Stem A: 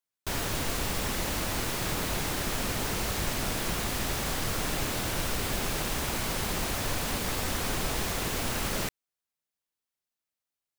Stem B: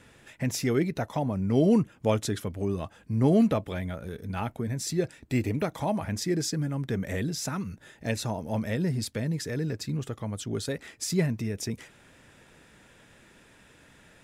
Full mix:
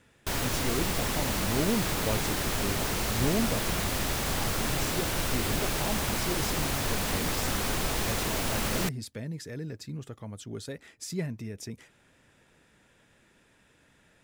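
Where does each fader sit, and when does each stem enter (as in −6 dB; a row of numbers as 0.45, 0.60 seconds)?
+1.0, −7.0 decibels; 0.00, 0.00 seconds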